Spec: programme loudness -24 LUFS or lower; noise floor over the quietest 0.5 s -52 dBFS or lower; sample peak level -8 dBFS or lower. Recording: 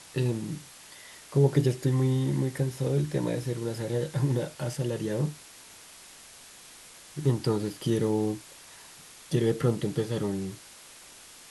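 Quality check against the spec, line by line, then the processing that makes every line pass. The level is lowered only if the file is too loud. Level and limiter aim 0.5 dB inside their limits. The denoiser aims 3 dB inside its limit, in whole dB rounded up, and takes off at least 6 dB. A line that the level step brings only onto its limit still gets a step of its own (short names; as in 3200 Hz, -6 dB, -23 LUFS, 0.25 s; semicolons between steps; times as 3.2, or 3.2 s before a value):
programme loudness -28.5 LUFS: OK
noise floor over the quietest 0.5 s -50 dBFS: fail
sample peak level -10.5 dBFS: OK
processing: denoiser 6 dB, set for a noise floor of -50 dBFS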